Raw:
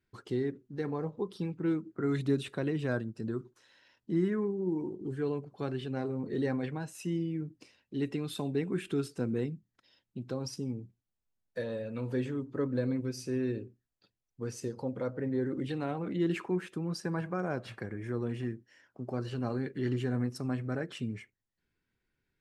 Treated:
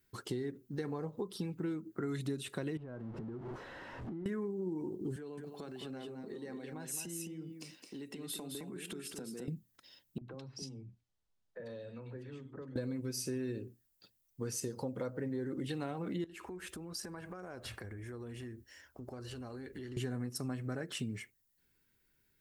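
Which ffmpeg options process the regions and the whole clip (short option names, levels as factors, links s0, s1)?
-filter_complex "[0:a]asettb=1/sr,asplit=3[s0][s1][s2];[s0]atrim=end=2.774[s3];[s1]atrim=start=2.77:end=4.26,asetpts=PTS-STARTPTS,afade=t=in:d=0.004:c=qsin,afade=t=out:st=1.486:d=0.004:c=qsin,aeval=exprs='val(0)+0.5*0.0119*sgn(val(0))':c=same,lowpass=1100,acompressor=threshold=0.00794:ratio=12:attack=3.2:release=140:knee=1:detection=peak[s4];[s2]atrim=start=4.256[s5];[s3][s4]acrossfade=d=0.004:c1=hsin:c2=qsin[s6];[s6][s5]acrossfade=d=0.004:c1=qsin:c2=hsin,asettb=1/sr,asplit=3[s7][s8][s9];[s7]atrim=end=5.164[s10];[s8]atrim=start=5.16:end=9.48,asetpts=PTS-STARTPTS,afade=t=in:d=0.004:c=qsin,afade=t=out:st=4.316:d=0.004:c=qsin,highpass=f=160:w=0.5412,highpass=f=160:w=1.3066,acompressor=threshold=0.00501:ratio=6:attack=3.2:release=140:knee=1:detection=peak,aecho=1:1:214:0.531,atrim=end_sample=190512[s11];[s9]atrim=start=9.476[s12];[s10][s11]acrossfade=d=0.004:c1=hsin:c2=qsin[s13];[s13][s12]acrossfade=d=0.004:c1=qsin:c2=hsin,asettb=1/sr,asplit=3[s14][s15][s16];[s14]atrim=end=10.184[s17];[s15]atrim=start=10.18:end=12.76,asetpts=PTS-STARTPTS,afade=t=in:d=0.004:c=qsin,afade=t=out:st=2.576:d=0.004:c=qsin,lowpass=4000,acompressor=threshold=0.00447:ratio=4:attack=3.2:release=140:knee=1:detection=peak,acrossover=split=250|2100[s18][s19][s20];[s18]adelay=30[s21];[s20]adelay=100[s22];[s21][s19][s22]amix=inputs=3:normalize=0,atrim=end_sample=113778[s23];[s16]atrim=start=12.756[s24];[s17][s23]acrossfade=d=0.004:c1=hsin:c2=qsin[s25];[s25][s24]acrossfade=d=0.004:c1=qsin:c2=hsin,asettb=1/sr,asplit=3[s26][s27][s28];[s26]atrim=end=16.244[s29];[s27]atrim=start=16.24:end=19.97,asetpts=PTS-STARTPTS,afade=t=in:d=0.004:c=qsin,afade=t=out:st=3.726:d=0.004:c=qsin,lowshelf=f=100:t=q:w=3:g=11.5,acompressor=threshold=0.00562:ratio=8:attack=3.2:release=140:knee=1:detection=peak[s30];[s28]atrim=start=19.966[s31];[s29][s30]acrossfade=d=0.004:c1=hsin:c2=qsin[s32];[s32][s31]acrossfade=d=0.004:c1=qsin:c2=hsin,aemphasis=mode=production:type=50fm,bandreject=f=2400:w=29,acompressor=threshold=0.0126:ratio=6,volume=1.41"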